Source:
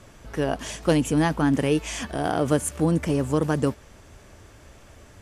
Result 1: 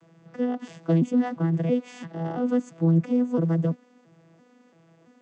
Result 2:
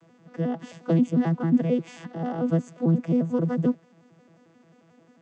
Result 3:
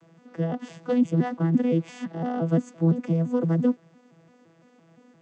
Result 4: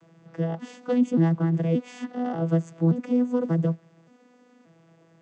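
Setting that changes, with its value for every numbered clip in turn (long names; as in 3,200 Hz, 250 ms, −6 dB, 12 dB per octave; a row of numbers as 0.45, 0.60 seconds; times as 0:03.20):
vocoder with an arpeggio as carrier, a note every: 337, 89, 171, 581 milliseconds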